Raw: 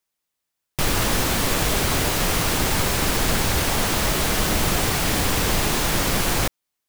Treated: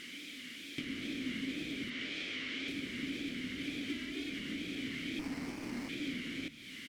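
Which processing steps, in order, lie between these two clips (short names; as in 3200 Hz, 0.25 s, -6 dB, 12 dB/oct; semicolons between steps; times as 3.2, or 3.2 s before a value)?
zero-crossing step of -30 dBFS; 1.9–2.68 three-band isolator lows -14 dB, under 430 Hz, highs -15 dB, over 6700 Hz; 3.9–4.3 comb 2.9 ms, depth 85%; compressor 10:1, threshold -31 dBFS, peak gain reduction 17.5 dB; vowel filter i; wow and flutter 98 cents; frequency-shifting echo 0.144 s, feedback 57%, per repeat -39 Hz, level -17.5 dB; 5.19–5.89 running maximum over 9 samples; gain +8.5 dB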